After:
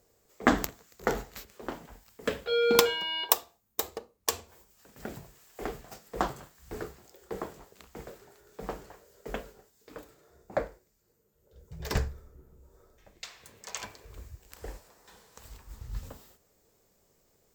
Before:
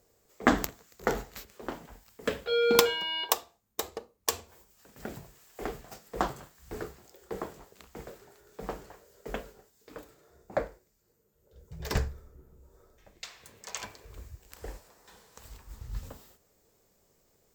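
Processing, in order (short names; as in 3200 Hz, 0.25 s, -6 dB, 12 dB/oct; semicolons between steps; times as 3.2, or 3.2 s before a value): 3.3–3.99 high shelf 12000 Hz +8.5 dB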